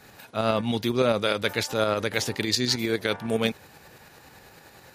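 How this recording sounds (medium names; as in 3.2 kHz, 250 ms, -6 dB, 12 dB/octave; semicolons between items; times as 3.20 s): tremolo saw up 9.8 Hz, depth 45%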